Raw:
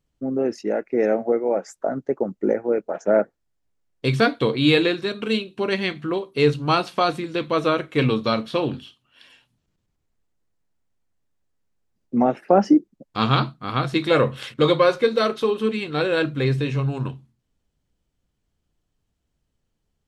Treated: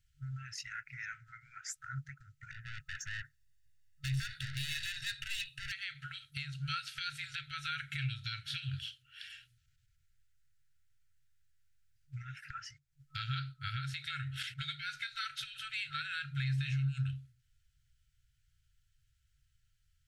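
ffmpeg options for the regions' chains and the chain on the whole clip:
ffmpeg -i in.wav -filter_complex "[0:a]asettb=1/sr,asplit=3[link_01][link_02][link_03];[link_01]atrim=end=2.514[link_04];[link_02]atrim=start=2.51:end=5.72,asetpts=PTS-STARTPTS,afade=type=in:duration=0.004:curve=qsin,afade=type=out:start_time=3.206:duration=0.004:curve=qsin,acompressor=threshold=-21dB:ratio=12:attack=3.2:release=140:knee=1:detection=peak,aeval=exprs='(tanh(44.7*val(0)+0.15)-tanh(0.15))/44.7':channel_layout=same,aecho=1:1:1.1:0.63,atrim=end_sample=141561[link_05];[link_03]atrim=start=5.716[link_06];[link_04][link_05]acrossfade=duration=0.004:curve1=hsin:curve2=qsin[link_07];[link_07][link_06]acrossfade=duration=0.004:curve1=qsin:curve2=hsin,acompressor=threshold=-24dB:ratio=10,afftfilt=real='re*(1-between(b*sr/4096,150,1300))':imag='im*(1-between(b*sr/4096,150,1300))':win_size=4096:overlap=0.75,alimiter=level_in=5dB:limit=-24dB:level=0:latency=1:release=387,volume=-5dB,volume=2dB" out.wav

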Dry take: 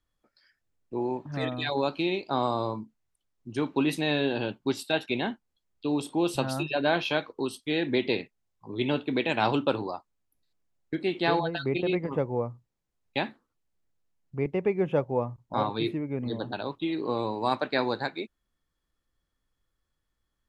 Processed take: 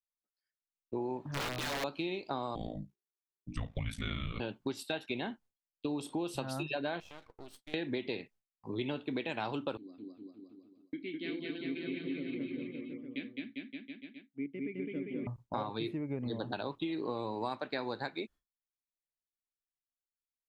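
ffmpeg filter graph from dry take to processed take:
ffmpeg -i in.wav -filter_complex "[0:a]asettb=1/sr,asplit=3[link_01][link_02][link_03];[link_01]atrim=end=1.294[link_04];[link_02]atrim=start=1.29:end=1.84,asetpts=PTS-STARTPTS,afade=type=in:duration=0.004:curve=qsin,afade=type=out:start_time=0.546:duration=0.004:curve=qsin,aeval=exprs='(mod(20*val(0)+1,2)-1)/20':channel_layout=same,bandreject=frequency=50:width_type=h:width=6,bandreject=frequency=100:width_type=h:width=6,bandreject=frequency=150:width_type=h:width=6,bandreject=frequency=200:width_type=h:width=6,bandreject=frequency=250:width_type=h:width=6,bandreject=frequency=300:width_type=h:width=6,bandreject=frequency=350:width_type=h:width=6,acrossover=split=5100[link_05][link_06];[link_06]acompressor=threshold=-42dB:ratio=4:attack=1:release=60[link_07];[link_05][link_07]amix=inputs=2:normalize=0[link_08];[link_03]atrim=start=1.836[link_09];[link_04][link_08]acrossfade=duration=0.004:curve1=hsin:curve2=qsin[link_10];[link_10][link_09]acrossfade=duration=0.004:curve1=qsin:curve2=hsin,asettb=1/sr,asplit=3[link_11][link_12][link_13];[link_11]atrim=end=2.554[link_14];[link_12]atrim=start=2.55:end=4.4,asetpts=PTS-STARTPTS,afade=type=in:duration=0.004:curve=qsin,afade=type=out:start_time=1.846:duration=0.004:curve=qsin,afreqshift=-390,aeval=exprs='val(0)*sin(2*PI*28*n/s)':channel_layout=same[link_15];[link_13]atrim=start=4.396[link_16];[link_14][link_15]acrossfade=duration=0.004:curve1=hsin:curve2=qsin[link_17];[link_17][link_16]acrossfade=duration=0.004:curve1=qsin:curve2=hsin,asettb=1/sr,asplit=3[link_18][link_19][link_20];[link_18]atrim=end=7.004[link_21];[link_19]atrim=start=7:end=7.74,asetpts=PTS-STARTPTS,afade=type=in:duration=0.004:curve=qsin,afade=type=out:start_time=0.736:duration=0.004:curve=qsin,acompressor=threshold=-43dB:ratio=5:attack=3.2:release=140:knee=1:detection=peak,aeval=exprs='max(val(0),0)':channel_layout=same[link_22];[link_20]atrim=start=7.736[link_23];[link_21][link_22]acrossfade=duration=0.004:curve1=hsin:curve2=qsin[link_24];[link_24][link_23]acrossfade=duration=0.004:curve1=qsin:curve2=hsin,asettb=1/sr,asplit=3[link_25][link_26][link_27];[link_25]atrim=end=9.774[link_28];[link_26]atrim=start=9.77:end=15.27,asetpts=PTS-STARTPTS,afade=type=in:duration=0.004:curve=qsin,afade=type=out:start_time=5.496:duration=0.004:curve=qsin,asplit=3[link_29][link_30][link_31];[link_29]bandpass=frequency=270:width_type=q:width=8,volume=0dB[link_32];[link_30]bandpass=frequency=2290:width_type=q:width=8,volume=-6dB[link_33];[link_31]bandpass=frequency=3010:width_type=q:width=8,volume=-9dB[link_34];[link_32][link_33][link_34]amix=inputs=3:normalize=0,aecho=1:1:210|399|569.1|722.2|860|984:0.794|0.631|0.501|0.398|0.316|0.251,atrim=end_sample=242550[link_35];[link_27]atrim=start=15.266[link_36];[link_28][link_35]acrossfade=duration=0.004:curve1=hsin:curve2=qsin[link_37];[link_37][link_36]acrossfade=duration=0.004:curve1=qsin:curve2=hsin,agate=range=-33dB:threshold=-47dB:ratio=3:detection=peak,acompressor=threshold=-33dB:ratio=6" out.wav

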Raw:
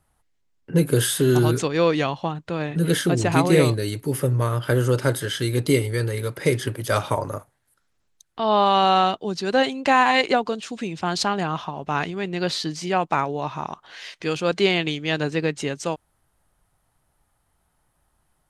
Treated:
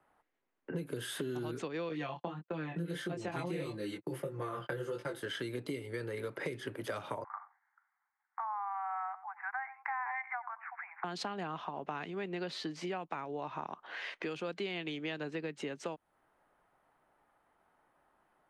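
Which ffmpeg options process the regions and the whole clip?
ffmpeg -i in.wav -filter_complex "[0:a]asettb=1/sr,asplit=3[link_01][link_02][link_03];[link_01]atrim=end=1.894[link_04];[link_02]atrim=start=1.89:end=5.23,asetpts=PTS-STARTPTS,afade=type=in:duration=0.004:curve=qsin,afade=type=out:start_time=3.336:duration=0.004:curve=qsin,aecho=1:1:5.8:0.9,atrim=end_sample=147294,agate=range=-39dB:threshold=-29dB:ratio=16:release=100:detection=peak,flanger=delay=19:depth=4.1:speed=1.6[link_05];[link_03]atrim=start=5.226[link_06];[link_04][link_05]acrossfade=duration=0.004:curve1=hsin:curve2=qsin[link_07];[link_07][link_06]acrossfade=duration=0.004:curve1=qsin:curve2=hsin,asettb=1/sr,asplit=3[link_08][link_09][link_10];[link_08]atrim=end=7.244[link_11];[link_09]atrim=start=7.24:end=11.04,asetpts=PTS-STARTPTS,afade=type=in:duration=0.004:curve=qsin,afade=type=out:start_time=3.796:duration=0.004:curve=qsin,asuperpass=centerf=1300:order=20:qfactor=0.88,aecho=1:1:91:0.0944,atrim=end_sample=167580[link_12];[link_10]atrim=start=11.036[link_13];[link_11][link_12]acrossfade=duration=0.004:curve1=hsin:curve2=qsin[link_14];[link_14][link_13]acrossfade=duration=0.004:curve1=qsin:curve2=hsin,acrossover=split=200|3000[link_15][link_16][link_17];[link_16]acompressor=threshold=-38dB:ratio=2.5[link_18];[link_15][link_18][link_17]amix=inputs=3:normalize=0,acrossover=split=240 2500:gain=0.0794 1 0.1[link_19][link_20][link_21];[link_19][link_20][link_21]amix=inputs=3:normalize=0,acompressor=threshold=-38dB:ratio=5,volume=2.5dB" out.wav

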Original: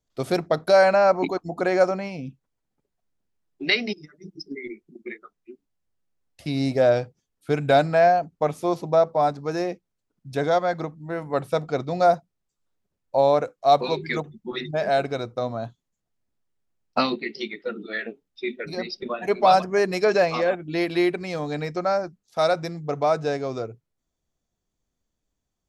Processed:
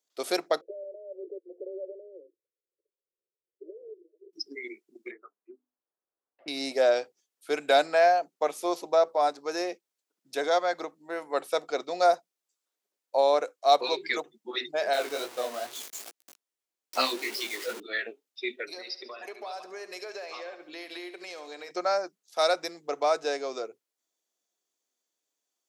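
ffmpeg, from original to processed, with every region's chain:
ffmpeg -i in.wav -filter_complex "[0:a]asettb=1/sr,asplit=3[link_01][link_02][link_03];[link_01]atrim=end=0.614[link_04];[link_02]atrim=start=0.61:end=4.33,asetpts=PTS-STARTPTS,afade=type=in:duration=0.004:curve=qsin,afade=type=out:start_time=3.716:duration=0.004:curve=qsin,acompressor=threshold=-29dB:ratio=4:attack=3.2:release=140:knee=1:detection=peak,afreqshift=19,asuperpass=centerf=440:order=12:qfactor=1.8[link_05];[link_03]atrim=start=4.326[link_06];[link_04][link_05]acrossfade=duration=0.004:curve1=hsin:curve2=qsin[link_07];[link_07][link_06]acrossfade=duration=0.004:curve1=qsin:curve2=hsin,asettb=1/sr,asplit=3[link_08][link_09][link_10];[link_08]atrim=end=5.114[link_11];[link_09]atrim=start=5.11:end=6.48,asetpts=PTS-STARTPTS,afade=type=in:duration=0.004:curve=qsin,afade=type=out:start_time=1.366:duration=0.004:curve=qsin,lowpass=frequency=1400:width=0.5412,lowpass=frequency=1400:width=1.3066,bandreject=frequency=50:width_type=h:width=6,bandreject=frequency=100:width_type=h:width=6,bandreject=frequency=150:width_type=h:width=6,bandreject=frequency=200:width_type=h:width=6,bandreject=frequency=250:width_type=h:width=6,bandreject=frequency=300:width_type=h:width=6[link_12];[link_10]atrim=start=6.476[link_13];[link_11][link_12]acrossfade=duration=0.004:curve1=hsin:curve2=qsin[link_14];[link_14][link_13]acrossfade=duration=0.004:curve1=qsin:curve2=hsin,asettb=1/sr,asplit=3[link_15][link_16][link_17];[link_15]atrim=end=14.934[link_18];[link_16]atrim=start=14.93:end=17.8,asetpts=PTS-STARTPTS,afade=type=in:duration=0.004:curve=qsin,afade=type=out:start_time=2.866:duration=0.004:curve=qsin,aeval=exprs='val(0)+0.5*0.0335*sgn(val(0))':channel_layout=same,flanger=delay=15:depth=5.9:speed=2.4[link_19];[link_17]atrim=start=17.796[link_20];[link_18][link_19]acrossfade=duration=0.004:curve1=hsin:curve2=qsin[link_21];[link_21][link_20]acrossfade=duration=0.004:curve1=qsin:curve2=hsin,asettb=1/sr,asplit=3[link_22][link_23][link_24];[link_22]atrim=end=18.664[link_25];[link_23]atrim=start=18.66:end=21.71,asetpts=PTS-STARTPTS,afade=type=in:duration=0.004:curve=qsin,afade=type=out:start_time=3.046:duration=0.004:curve=qsin,bass=frequency=250:gain=-10,treble=frequency=4000:gain=0,acompressor=threshold=-35dB:ratio=5:attack=3.2:release=140:knee=1:detection=peak,aecho=1:1:71|142|213|284|355|426:0.237|0.128|0.0691|0.0373|0.0202|0.0109,atrim=end_sample=134505[link_26];[link_24]atrim=start=21.706[link_27];[link_25][link_26]acrossfade=duration=0.004:curve1=hsin:curve2=qsin[link_28];[link_28][link_27]acrossfade=duration=0.004:curve1=qsin:curve2=hsin,highpass=frequency=330:width=0.5412,highpass=frequency=330:width=1.3066,highshelf=frequency=2500:gain=9.5,volume=-4.5dB" out.wav

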